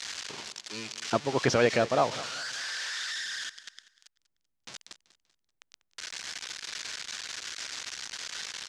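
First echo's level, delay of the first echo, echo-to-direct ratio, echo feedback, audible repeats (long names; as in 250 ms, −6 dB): −17.5 dB, 193 ms, −17.0 dB, 40%, 3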